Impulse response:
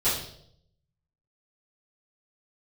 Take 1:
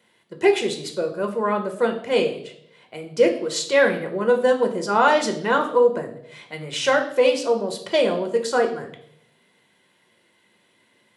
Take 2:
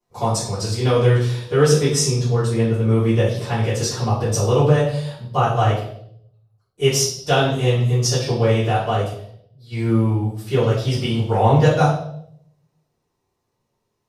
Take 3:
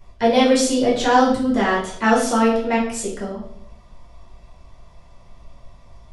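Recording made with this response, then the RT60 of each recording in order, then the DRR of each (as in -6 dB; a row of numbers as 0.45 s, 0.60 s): 2; 0.70 s, 0.70 s, 0.70 s; 4.0 dB, -14.5 dB, -5.5 dB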